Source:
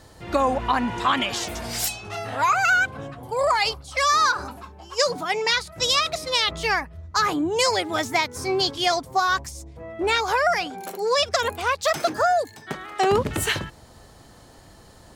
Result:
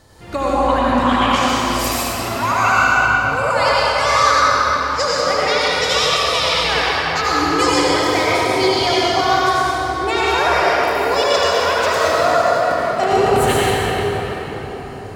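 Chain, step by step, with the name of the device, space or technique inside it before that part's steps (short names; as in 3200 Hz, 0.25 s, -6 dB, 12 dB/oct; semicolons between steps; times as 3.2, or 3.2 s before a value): cathedral (reverb RT60 5.2 s, pre-delay 74 ms, DRR -8.5 dB); gain -1.5 dB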